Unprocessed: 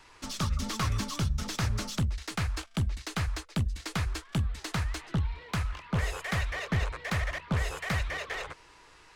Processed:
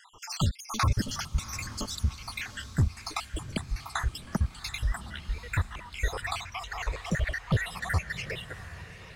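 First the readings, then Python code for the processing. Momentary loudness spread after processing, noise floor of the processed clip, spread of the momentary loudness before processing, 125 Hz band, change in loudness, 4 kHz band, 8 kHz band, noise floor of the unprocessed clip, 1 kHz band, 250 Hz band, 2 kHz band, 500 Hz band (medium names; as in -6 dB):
8 LU, -48 dBFS, 3 LU, 0.0 dB, 0.0 dB, +0.5 dB, +1.0 dB, -56 dBFS, +1.5 dB, -1.5 dB, +0.5 dB, -1.0 dB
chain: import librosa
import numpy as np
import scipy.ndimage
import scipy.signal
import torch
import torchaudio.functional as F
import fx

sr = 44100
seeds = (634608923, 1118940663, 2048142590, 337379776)

y = fx.spec_dropout(x, sr, seeds[0], share_pct=68)
y = fx.echo_diffused(y, sr, ms=746, feedback_pct=45, wet_db=-13.5)
y = y * librosa.db_to_amplitude(5.5)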